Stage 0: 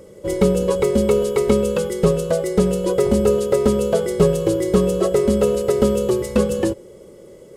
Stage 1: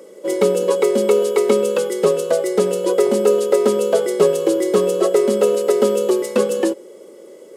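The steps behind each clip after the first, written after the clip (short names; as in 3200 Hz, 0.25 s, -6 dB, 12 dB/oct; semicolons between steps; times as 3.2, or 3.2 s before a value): HPF 260 Hz 24 dB/oct; gain +2.5 dB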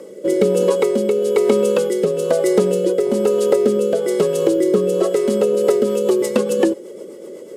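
low shelf 190 Hz +11 dB; compressor, threshold -17 dBFS, peak gain reduction 10 dB; rotary speaker horn 1.1 Hz, later 8 Hz, at 5.34; gain +6 dB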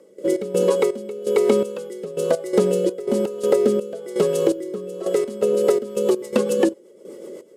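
step gate ".x.xx..xx...x.xx" 83 bpm -12 dB; gain -2 dB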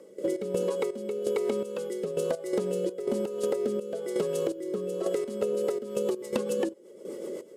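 compressor, threshold -26 dBFS, peak gain reduction 14 dB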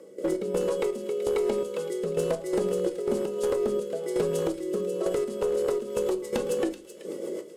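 one-sided clip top -23.5 dBFS; thin delay 0.38 s, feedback 36%, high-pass 2200 Hz, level -10.5 dB; shoebox room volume 190 m³, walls furnished, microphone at 0.65 m; gain +1.5 dB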